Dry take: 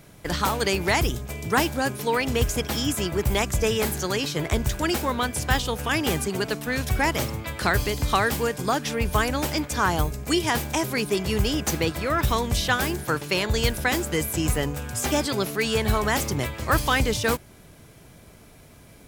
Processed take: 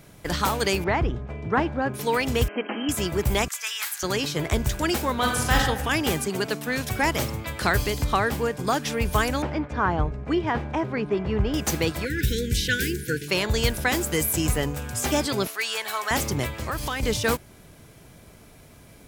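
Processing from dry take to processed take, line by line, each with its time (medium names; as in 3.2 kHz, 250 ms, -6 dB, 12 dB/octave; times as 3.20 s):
0.84–1.94 s: low-pass 1.7 kHz
2.48–2.89 s: brick-wall FIR band-pass 190–3200 Hz
3.48–4.03 s: high-pass 1.2 kHz 24 dB/octave
5.14–5.58 s: reverb throw, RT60 0.9 s, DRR -1 dB
6.12–7.03 s: high-pass 110 Hz
8.04–8.67 s: treble shelf 2.8 kHz -8 dB
9.42–11.54 s: low-pass 1.7 kHz
12.05–13.28 s: brick-wall FIR band-stop 520–1400 Hz
14.01–14.47 s: treble shelf 8 kHz +8 dB
15.47–16.11 s: high-pass 890 Hz
16.62–17.03 s: compression 5:1, threshold -25 dBFS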